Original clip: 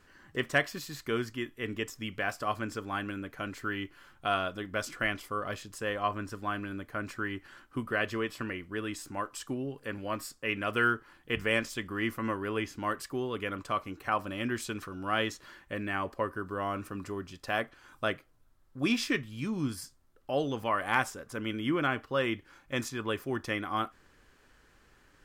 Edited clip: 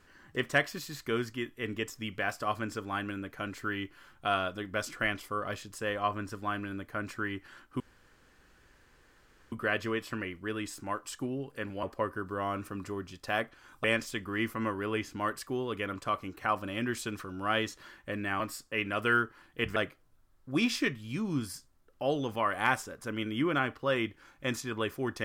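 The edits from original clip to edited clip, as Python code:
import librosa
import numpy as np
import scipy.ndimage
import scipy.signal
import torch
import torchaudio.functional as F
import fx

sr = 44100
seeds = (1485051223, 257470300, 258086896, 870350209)

y = fx.edit(x, sr, fx.insert_room_tone(at_s=7.8, length_s=1.72),
    fx.swap(start_s=10.11, length_s=1.36, other_s=16.03, other_length_s=2.01), tone=tone)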